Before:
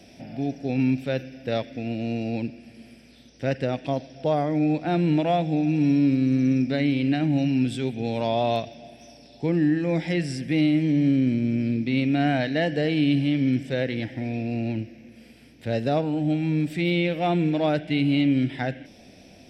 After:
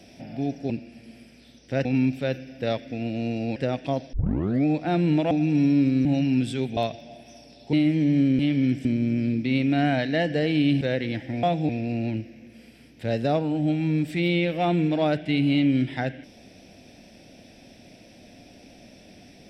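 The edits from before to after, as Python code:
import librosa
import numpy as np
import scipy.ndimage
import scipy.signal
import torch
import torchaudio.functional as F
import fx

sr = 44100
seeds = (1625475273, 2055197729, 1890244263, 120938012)

y = fx.edit(x, sr, fx.move(start_s=2.41, length_s=1.15, to_s=0.7),
    fx.tape_start(start_s=4.13, length_s=0.52),
    fx.move(start_s=5.31, length_s=0.26, to_s=14.31),
    fx.cut(start_s=6.31, length_s=0.98),
    fx.cut(start_s=8.01, length_s=0.49),
    fx.cut(start_s=9.46, length_s=1.15),
    fx.move(start_s=13.23, length_s=0.46, to_s=11.27), tone=tone)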